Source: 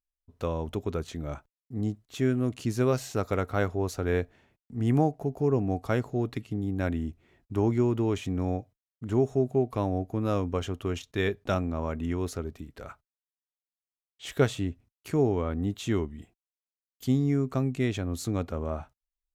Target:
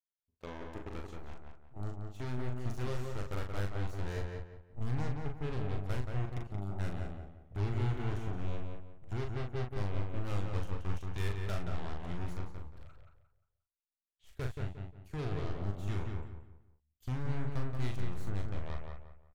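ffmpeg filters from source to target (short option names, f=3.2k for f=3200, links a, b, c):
-filter_complex "[0:a]aeval=exprs='0.316*(cos(1*acos(clip(val(0)/0.316,-1,1)))-cos(1*PI/2))+0.0891*(cos(3*acos(clip(val(0)/0.316,-1,1)))-cos(3*PI/2))+0.00501*(cos(4*acos(clip(val(0)/0.316,-1,1)))-cos(4*PI/2))+0.00794*(cos(7*acos(clip(val(0)/0.316,-1,1)))-cos(7*PI/2))':c=same,dynaudnorm=f=210:g=5:m=14dB,asoftclip=type=tanh:threshold=-35.5dB,asubboost=boost=9.5:cutoff=82,asplit=2[a][b];[b]adelay=40,volume=-5dB[c];[a][c]amix=inputs=2:normalize=0,asplit=2[d][e];[e]adelay=177,lowpass=f=2.7k:p=1,volume=-3.5dB,asplit=2[f][g];[g]adelay=177,lowpass=f=2.7k:p=1,volume=0.33,asplit=2[h][i];[i]adelay=177,lowpass=f=2.7k:p=1,volume=0.33,asplit=2[j][k];[k]adelay=177,lowpass=f=2.7k:p=1,volume=0.33[l];[d][f][h][j][l]amix=inputs=5:normalize=0,volume=1dB"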